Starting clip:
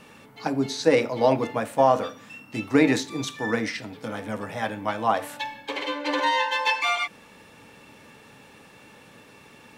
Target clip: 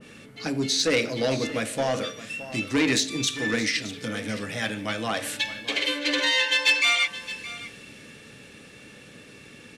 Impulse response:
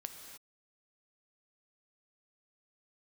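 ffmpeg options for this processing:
-filter_complex "[0:a]lowpass=frequency=11000:width=0.5412,lowpass=frequency=11000:width=1.3066,equalizer=frequency=910:width=1.9:gain=-14.5,bandreject=frequency=89.42:width_type=h:width=4,bandreject=frequency=178.84:width_type=h:width=4,bandreject=frequency=268.26:width_type=h:width=4,bandreject=frequency=357.68:width_type=h:width=4,bandreject=frequency=447.1:width_type=h:width=4,bandreject=frequency=536.52:width_type=h:width=4,bandreject=frequency=625.94:width_type=h:width=4,bandreject=frequency=715.36:width_type=h:width=4,bandreject=frequency=804.78:width_type=h:width=4,bandreject=frequency=894.2:width_type=h:width=4,bandreject=frequency=983.62:width_type=h:width=4,bandreject=frequency=1073.04:width_type=h:width=4,bandreject=frequency=1162.46:width_type=h:width=4,bandreject=frequency=1251.88:width_type=h:width=4,asplit=2[link_01][link_02];[link_02]acompressor=threshold=-38dB:ratio=6,volume=-3dB[link_03];[link_01][link_03]amix=inputs=2:normalize=0,asoftclip=type=tanh:threshold=-17.5dB,asplit=2[link_04][link_05];[link_05]aecho=0:1:619:0.188[link_06];[link_04][link_06]amix=inputs=2:normalize=0,adynamicequalizer=threshold=0.00708:dfrequency=1700:dqfactor=0.7:tfrequency=1700:tqfactor=0.7:attack=5:release=100:ratio=0.375:range=4:mode=boostabove:tftype=highshelf"

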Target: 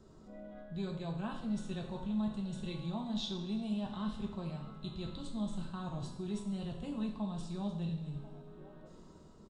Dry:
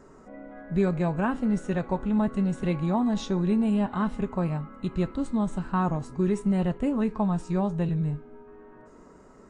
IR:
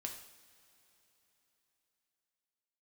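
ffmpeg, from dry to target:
-filter_complex "[0:a]acrossover=split=450|750[link_01][link_02][link_03];[link_01]asoftclip=type=tanh:threshold=-23.5dB[link_04];[link_02]aecho=1:1:1042:0.266[link_05];[link_03]dynaudnorm=framelen=110:gausssize=9:maxgain=4.5dB[link_06];[link_04][link_05][link_06]amix=inputs=3:normalize=0,firequalizer=gain_entry='entry(180,0);entry(310,-6);entry(2000,-15);entry(3500,7);entry(6200,-6)':delay=0.05:min_phase=1,areverse,acompressor=threshold=-35dB:ratio=4,areverse[link_07];[1:a]atrim=start_sample=2205[link_08];[link_07][link_08]afir=irnorm=-1:irlink=0,volume=1dB"

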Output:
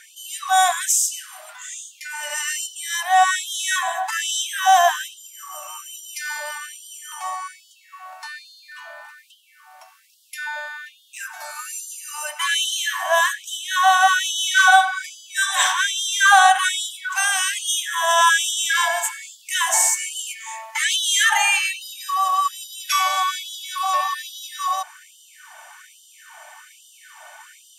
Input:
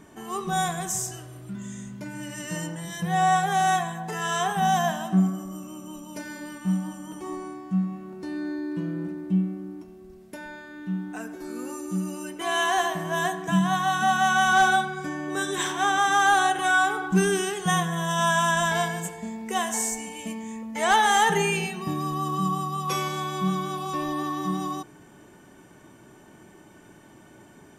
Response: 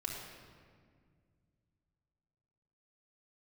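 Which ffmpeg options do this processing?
-filter_complex "[0:a]asplit=2[link_01][link_02];[link_02]acompressor=threshold=-33dB:ratio=6,volume=-0.5dB[link_03];[link_01][link_03]amix=inputs=2:normalize=0,afftfilt=real='re*gte(b*sr/1024,560*pow(2900/560,0.5+0.5*sin(2*PI*1.2*pts/sr)))':imag='im*gte(b*sr/1024,560*pow(2900/560,0.5+0.5*sin(2*PI*1.2*pts/sr)))':win_size=1024:overlap=0.75,volume=8dB"

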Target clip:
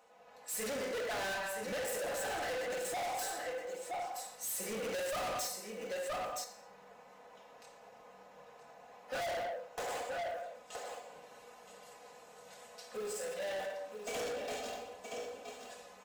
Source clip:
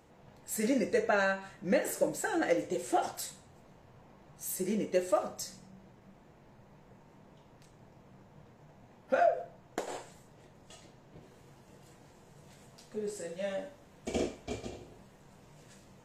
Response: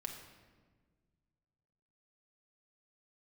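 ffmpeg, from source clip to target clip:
-filter_complex "[0:a]highpass=frequency=150:poles=1,asplit=2[link_01][link_02];[link_02]acrusher=bits=6:mix=0:aa=0.000001,volume=-10dB[link_03];[link_01][link_03]amix=inputs=2:normalize=0[link_04];[1:a]atrim=start_sample=2205,afade=type=out:start_time=0.32:duration=0.01,atrim=end_sample=14553[link_05];[link_04][link_05]afir=irnorm=-1:irlink=0,asettb=1/sr,asplit=3[link_06][link_07][link_08];[link_06]atrim=end=4.844[link_09];[link_07]atrim=start=4.84:end=5.47,asetpts=PTS-STARTPTS,afade=type=in:duration=0.004:curve=qsin,afade=type=out:start_time=0.626:duration=0.004:curve=qsin,acontrast=86[link_10];[link_08]atrim=start=5.466[link_11];[link_09][link_10]acrossfade=duration=0.004:curve1=hsin:curve2=qsin[link_12];[link_12][link_11]acrossfade=duration=0.004:curve1=qsin:curve2=hsin,lowshelf=frequency=390:width_type=q:width=1.5:gain=-13,aecho=1:1:4:0.77,aecho=1:1:971:0.266,dynaudnorm=framelen=110:gausssize=7:maxgain=5dB,asoftclip=type=tanh:threshold=-36dB"

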